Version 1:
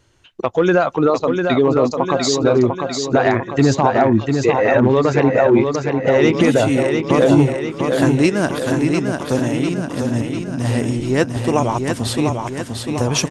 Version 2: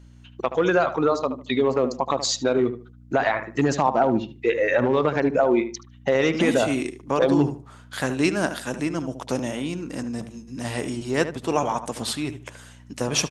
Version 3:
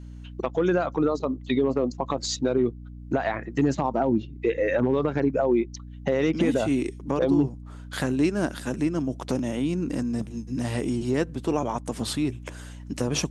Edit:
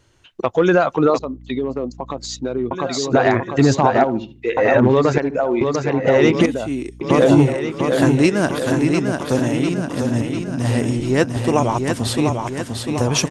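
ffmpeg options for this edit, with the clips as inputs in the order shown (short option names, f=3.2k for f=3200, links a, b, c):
-filter_complex "[2:a]asplit=2[a][b];[1:a]asplit=2[c][d];[0:a]asplit=5[e][f][g][h][i];[e]atrim=end=1.192[j];[a]atrim=start=1.188:end=2.712[k];[f]atrim=start=2.708:end=4.042[l];[c]atrim=start=4.038:end=4.572[m];[g]atrim=start=4.568:end=5.182[n];[d]atrim=start=5.178:end=5.612[o];[h]atrim=start=5.608:end=6.462[p];[b]atrim=start=6.458:end=7.012[q];[i]atrim=start=7.008[r];[j][k]acrossfade=d=0.004:c1=hsin:c2=hsin[s];[s][l]acrossfade=d=0.004:c1=hsin:c2=hsin[t];[t][m]acrossfade=d=0.004:c1=hsin:c2=hsin[u];[u][n]acrossfade=d=0.004:c1=hsin:c2=hsin[v];[v][o]acrossfade=d=0.004:c1=hsin:c2=hsin[w];[w][p]acrossfade=d=0.004:c1=hsin:c2=hsin[x];[x][q]acrossfade=d=0.004:c1=hsin:c2=hsin[y];[y][r]acrossfade=d=0.004:c1=hsin:c2=hsin"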